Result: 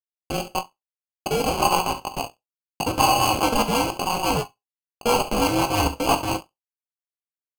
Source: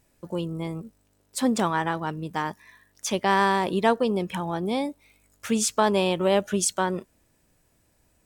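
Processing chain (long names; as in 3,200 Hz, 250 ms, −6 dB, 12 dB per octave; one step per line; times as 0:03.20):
neighbouring bands swapped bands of 1,000 Hz
dynamic equaliser 4,200 Hz, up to −5 dB, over −48 dBFS, Q 3.4
in parallel at +2 dB: brickwall limiter −15 dBFS, peak gain reduction 7 dB
on the sum: comparator with hysteresis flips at −16.5 dBFS
high-pass with resonance 740 Hz, resonance Q 7.6
sample-rate reduction 1,700 Hz, jitter 0%
rotating-speaker cabinet horn 0.9 Hz, later 5.5 Hz, at 0:02.73
on a send: ambience of single reflections 20 ms −12 dB, 44 ms −15.5 dB, 75 ms −13 dB
on the sum: reverb whose tail is shaped and stops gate 120 ms falling, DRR 9.5 dB
wrong playback speed 44.1 kHz file played as 48 kHz
every ending faded ahead of time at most 360 dB per second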